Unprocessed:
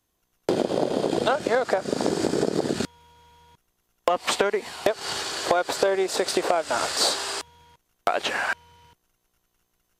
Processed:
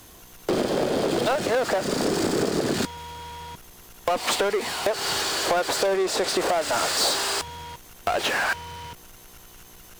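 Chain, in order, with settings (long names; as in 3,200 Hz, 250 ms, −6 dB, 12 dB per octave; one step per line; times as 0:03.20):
power curve on the samples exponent 0.5
0:05.96–0:06.37: high-shelf EQ 10,000 Hz −7.5 dB
level −5.5 dB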